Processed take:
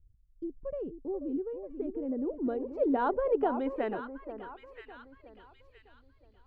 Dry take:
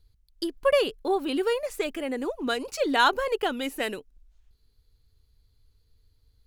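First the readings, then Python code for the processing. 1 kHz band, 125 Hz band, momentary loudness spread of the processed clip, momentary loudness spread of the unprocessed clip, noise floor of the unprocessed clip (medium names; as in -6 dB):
-7.0 dB, no reading, 18 LU, 10 LU, -66 dBFS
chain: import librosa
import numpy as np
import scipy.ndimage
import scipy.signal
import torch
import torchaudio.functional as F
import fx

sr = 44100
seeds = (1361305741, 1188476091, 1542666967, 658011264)

y = fx.echo_alternate(x, sr, ms=485, hz=1100.0, feedback_pct=50, wet_db=-10.5)
y = fx.filter_sweep_lowpass(y, sr, from_hz=230.0, to_hz=2800.0, start_s=1.5, end_s=5.48, q=0.9)
y = y * librosa.db_to_amplitude(-1.0)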